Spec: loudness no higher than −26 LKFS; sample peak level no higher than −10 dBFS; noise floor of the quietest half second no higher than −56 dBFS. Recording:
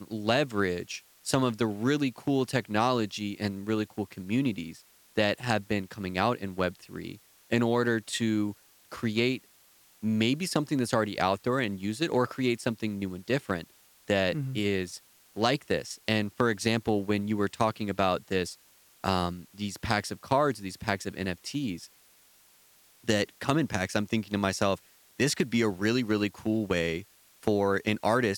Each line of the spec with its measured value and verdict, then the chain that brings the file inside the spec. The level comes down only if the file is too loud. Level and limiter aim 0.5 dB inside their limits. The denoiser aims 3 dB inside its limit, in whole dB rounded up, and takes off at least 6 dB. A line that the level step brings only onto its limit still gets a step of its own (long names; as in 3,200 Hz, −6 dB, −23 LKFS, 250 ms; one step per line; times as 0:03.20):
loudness −29.5 LKFS: in spec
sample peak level −9.0 dBFS: out of spec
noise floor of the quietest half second −60 dBFS: in spec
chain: brickwall limiter −10.5 dBFS